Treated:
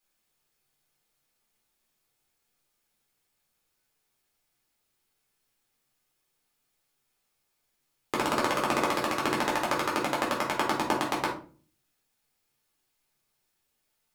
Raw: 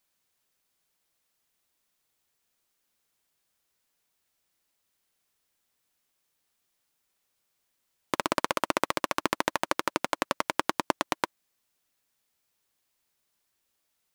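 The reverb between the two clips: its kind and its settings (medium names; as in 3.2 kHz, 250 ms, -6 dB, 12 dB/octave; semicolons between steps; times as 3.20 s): simulated room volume 290 m³, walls furnished, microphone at 3.9 m; trim -5.5 dB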